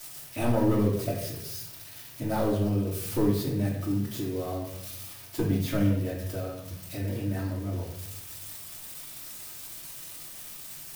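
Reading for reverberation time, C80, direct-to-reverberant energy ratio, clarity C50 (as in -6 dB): 0.80 s, 7.0 dB, -6.0 dB, 4.0 dB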